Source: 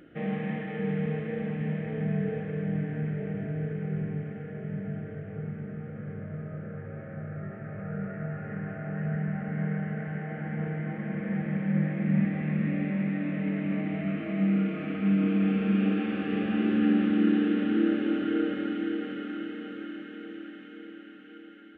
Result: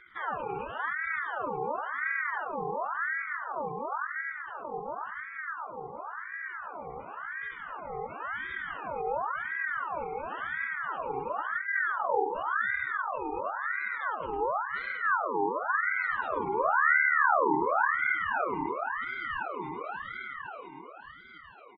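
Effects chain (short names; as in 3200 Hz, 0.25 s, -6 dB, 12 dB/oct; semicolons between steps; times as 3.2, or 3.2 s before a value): spectral gate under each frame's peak -20 dB strong; 19.22–20.69 bell 600 Hz +4.5 dB 2.6 oct; outdoor echo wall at 18 m, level -7 dB; ring modulator with a swept carrier 1200 Hz, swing 50%, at 0.94 Hz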